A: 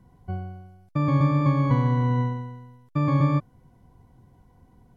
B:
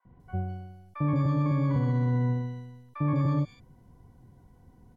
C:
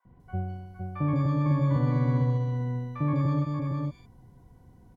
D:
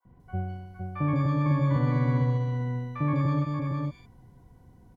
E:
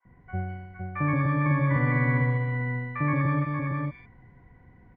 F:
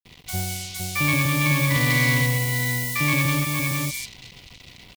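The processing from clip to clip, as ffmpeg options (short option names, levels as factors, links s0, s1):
-filter_complex "[0:a]alimiter=limit=0.126:level=0:latency=1:release=61,acrossover=split=910|2800[s0][s1][s2];[s0]adelay=50[s3];[s2]adelay=200[s4];[s3][s1][s4]amix=inputs=3:normalize=0,adynamicequalizer=threshold=0.00398:dfrequency=2100:dqfactor=0.7:tfrequency=2100:tqfactor=0.7:attack=5:release=100:ratio=0.375:range=2:mode=cutabove:tftype=highshelf"
-af "aecho=1:1:460:0.596"
-af "adynamicequalizer=threshold=0.00316:dfrequency=2100:dqfactor=0.81:tfrequency=2100:tqfactor=0.81:attack=5:release=100:ratio=0.375:range=2.5:mode=boostabove:tftype=bell"
-af "lowpass=f=2000:t=q:w=5.8"
-filter_complex "[0:a]asplit=2[s0][s1];[s1]asoftclip=type=tanh:threshold=0.0376,volume=0.473[s2];[s0][s2]amix=inputs=2:normalize=0,acrusher=bits=7:mix=0:aa=0.5,aexciter=amount=15.5:drive=3.9:freq=2500"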